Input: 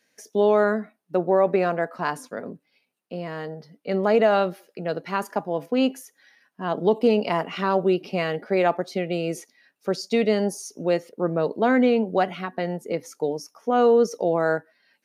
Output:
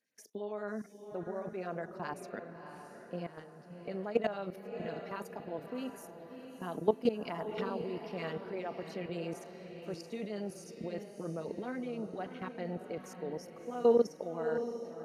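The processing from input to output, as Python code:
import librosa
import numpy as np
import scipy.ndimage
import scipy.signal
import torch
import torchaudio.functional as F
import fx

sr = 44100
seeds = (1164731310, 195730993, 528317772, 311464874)

y = fx.level_steps(x, sr, step_db=16)
y = fx.filter_lfo_notch(y, sr, shape='sine', hz=9.6, low_hz=500.0, high_hz=6200.0, q=0.91)
y = fx.echo_diffused(y, sr, ms=675, feedback_pct=41, wet_db=-8)
y = y * 10.0 ** (-5.5 / 20.0)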